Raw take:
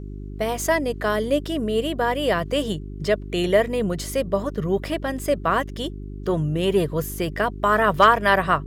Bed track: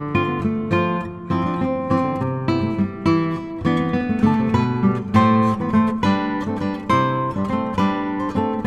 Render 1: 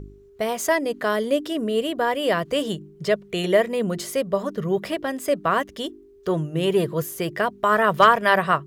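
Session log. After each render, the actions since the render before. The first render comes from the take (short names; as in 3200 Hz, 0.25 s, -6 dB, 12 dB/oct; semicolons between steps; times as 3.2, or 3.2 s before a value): de-hum 50 Hz, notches 7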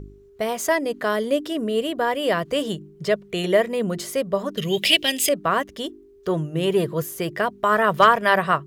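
4.57–5.29 resonant high shelf 1900 Hz +14 dB, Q 3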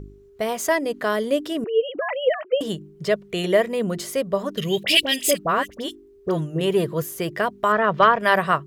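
1.64–2.61 sine-wave speech; 4.83–6.61 dispersion highs, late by 46 ms, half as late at 1500 Hz; 7.72–8.2 air absorption 180 m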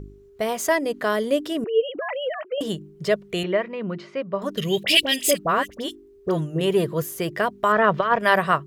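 1.88–2.58 compressor 3:1, threshold -25 dBFS; 3.43–4.42 speaker cabinet 150–3400 Hz, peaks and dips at 240 Hz -6 dB, 460 Hz -8 dB, 710 Hz -7 dB, 1800 Hz -4 dB, 3400 Hz -10 dB; 7.76–8.19 negative-ratio compressor -17 dBFS, ratio -0.5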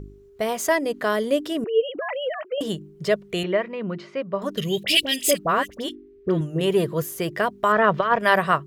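4.62–5.27 bell 1000 Hz -6.5 dB 2 oct; 5.89–6.41 EQ curve 140 Hz 0 dB, 250 Hz +7 dB, 790 Hz -9 dB, 2100 Hz +4 dB, 7600 Hz -13 dB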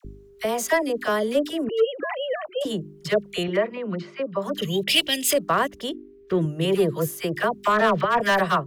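overloaded stage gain 13 dB; dispersion lows, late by 49 ms, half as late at 960 Hz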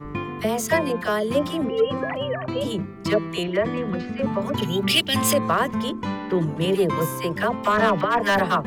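add bed track -10 dB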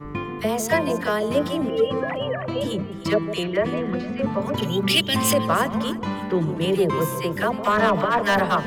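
echo with dull and thin repeats by turns 0.154 s, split 950 Hz, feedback 53%, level -10 dB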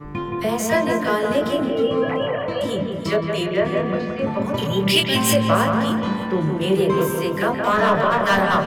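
doubler 26 ms -5 dB; dark delay 0.172 s, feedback 48%, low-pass 2800 Hz, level -4.5 dB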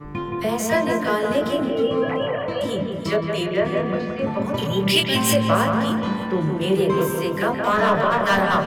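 gain -1 dB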